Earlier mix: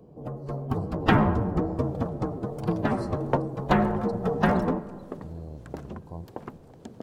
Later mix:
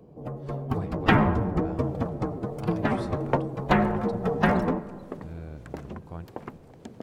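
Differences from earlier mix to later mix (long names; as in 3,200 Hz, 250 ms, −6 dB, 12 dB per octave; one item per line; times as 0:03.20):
speech: remove linear-phase brick-wall band-stop 1,100–3,900 Hz
master: add parametric band 2,200 Hz +5 dB 0.71 octaves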